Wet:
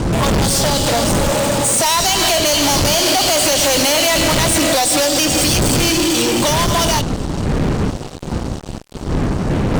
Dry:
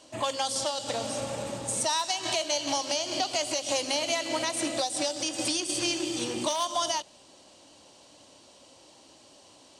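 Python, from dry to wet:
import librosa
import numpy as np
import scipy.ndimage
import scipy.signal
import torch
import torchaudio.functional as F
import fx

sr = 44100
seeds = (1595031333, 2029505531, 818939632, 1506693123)

y = fx.doppler_pass(x, sr, speed_mps=7, closest_m=7.9, pass_at_s=3.62)
y = fx.dmg_wind(y, sr, seeds[0], corner_hz=220.0, level_db=-39.0)
y = fx.fuzz(y, sr, gain_db=47.0, gate_db=-52.0)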